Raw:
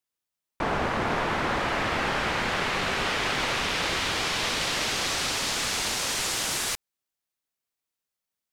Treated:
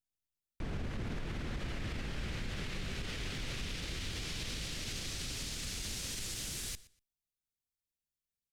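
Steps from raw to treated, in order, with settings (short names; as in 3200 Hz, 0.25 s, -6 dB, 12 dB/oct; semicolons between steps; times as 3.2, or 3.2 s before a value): passive tone stack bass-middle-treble 10-0-1; limiter -42.5 dBFS, peak gain reduction 10 dB; on a send: feedback echo 0.12 s, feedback 20%, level -20 dB; on the sum: gain +12 dB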